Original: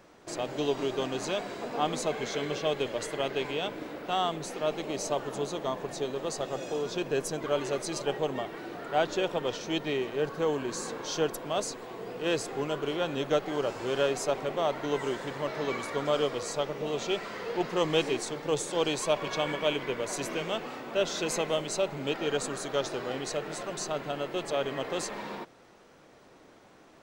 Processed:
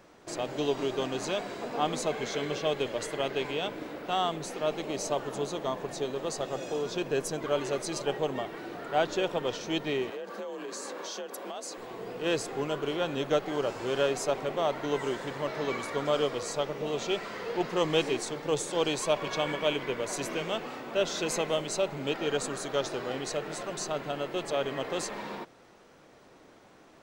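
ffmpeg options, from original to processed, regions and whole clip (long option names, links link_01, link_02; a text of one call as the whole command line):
ffmpeg -i in.wav -filter_complex "[0:a]asettb=1/sr,asplit=3[link_01][link_02][link_03];[link_01]atrim=end=10.104[link_04];[link_02]atrim=start=10.1:end=11.78,asetpts=PTS-STARTPTS,afade=type=in:duration=0.004:curve=qsin,afade=type=out:start_time=1.676:duration=0.004:curve=qsin,highpass=190,acompressor=threshold=-34dB:ratio=12:attack=3.2:release=140:knee=1:detection=peak,afreqshift=46[link_05];[link_03]atrim=start=11.776[link_06];[link_04][link_05]acrossfade=duration=0.004:curve1=hsin:curve2=qsin[link_07];[link_07][link_06]acrossfade=duration=0.004:curve1=qsin:curve2=hsin" out.wav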